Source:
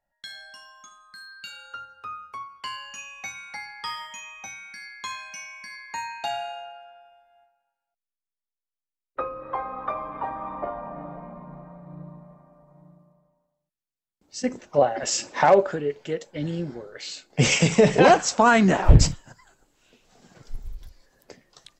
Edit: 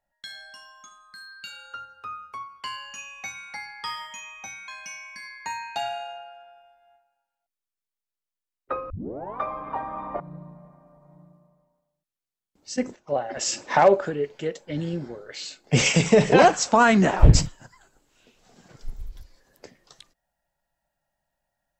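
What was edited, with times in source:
4.68–5.16 s: delete
9.38 s: tape start 0.50 s
10.68–11.86 s: delete
14.62–15.22 s: fade in, from -13.5 dB

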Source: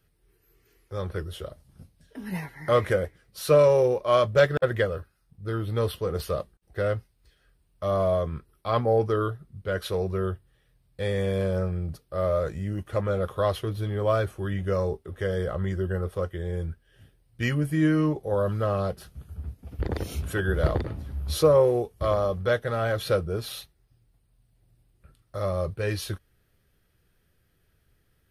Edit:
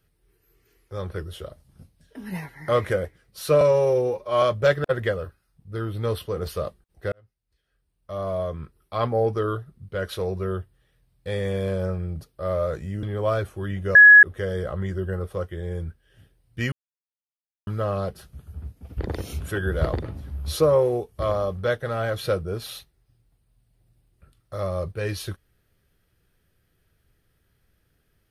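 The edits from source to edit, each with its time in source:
3.61–4.15 s: stretch 1.5×
6.85–8.73 s: fade in
12.76–13.85 s: delete
14.77–15.05 s: bleep 1.68 kHz -6 dBFS
17.54–18.49 s: mute

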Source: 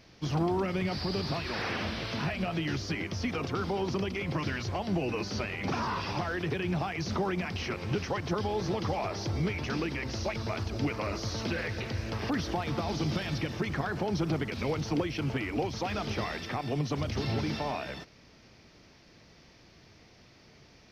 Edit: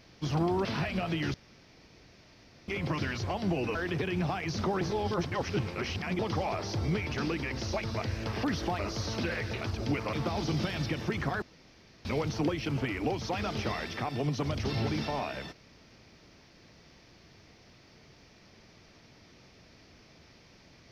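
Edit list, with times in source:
0.65–2.10 s: delete
2.79–4.13 s: room tone
5.20–6.27 s: delete
7.33–8.71 s: reverse
10.54–11.06 s: swap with 11.88–12.65 s
13.94–14.57 s: room tone

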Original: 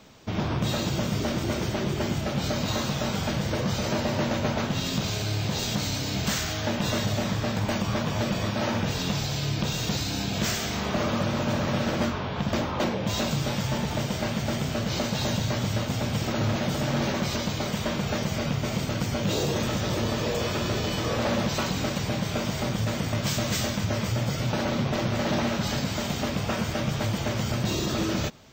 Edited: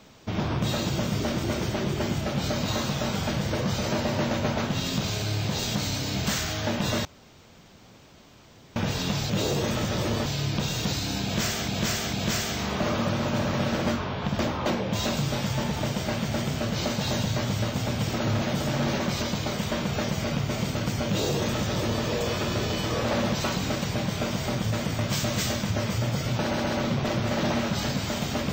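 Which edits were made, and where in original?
7.05–8.76 s: room tone
10.27–10.72 s: loop, 3 plays
19.22–20.18 s: copy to 9.30 s
24.55 s: stutter 0.13 s, 3 plays

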